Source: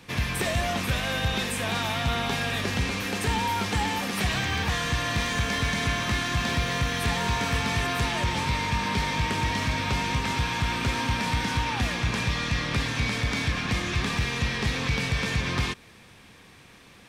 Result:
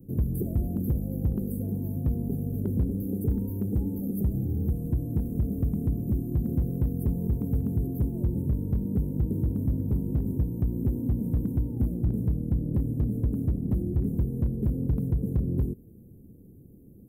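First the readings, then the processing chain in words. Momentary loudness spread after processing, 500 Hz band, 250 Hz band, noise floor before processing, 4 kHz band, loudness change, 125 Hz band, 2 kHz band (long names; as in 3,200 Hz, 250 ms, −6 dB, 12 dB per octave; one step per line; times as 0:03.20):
2 LU, −5.0 dB, +3.0 dB, −51 dBFS, below −40 dB, −2.5 dB, +2.5 dB, below −40 dB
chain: in parallel at −1.5 dB: brickwall limiter −24 dBFS, peak gain reduction 7 dB
on the sum: inverse Chebyshev band-stop filter 1,300–5,200 Hz, stop band 70 dB
hard clipping −19 dBFS, distortion −19 dB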